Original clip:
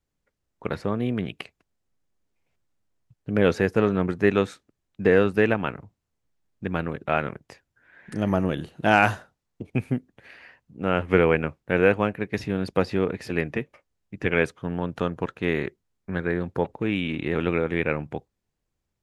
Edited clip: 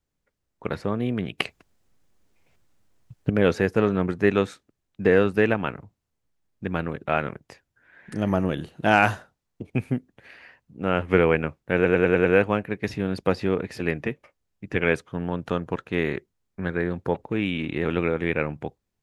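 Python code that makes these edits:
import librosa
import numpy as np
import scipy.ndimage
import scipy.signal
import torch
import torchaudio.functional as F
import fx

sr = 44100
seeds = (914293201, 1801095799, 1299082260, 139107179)

y = fx.edit(x, sr, fx.clip_gain(start_s=1.38, length_s=1.92, db=11.0),
    fx.stutter(start_s=11.75, slice_s=0.1, count=6), tone=tone)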